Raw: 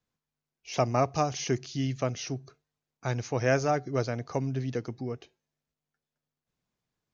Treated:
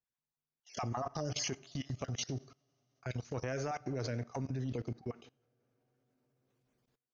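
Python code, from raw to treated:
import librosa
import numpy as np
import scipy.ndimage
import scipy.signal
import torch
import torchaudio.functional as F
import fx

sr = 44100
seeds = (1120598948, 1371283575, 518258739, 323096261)

y = fx.spec_dropout(x, sr, seeds[0], share_pct=28)
y = fx.transient(y, sr, attack_db=-8, sustain_db=-4)
y = fx.rev_double_slope(y, sr, seeds[1], early_s=0.55, late_s=4.6, knee_db=-22, drr_db=13.5)
y = fx.level_steps(y, sr, step_db=21)
y = y * librosa.db_to_amplitude(5.5)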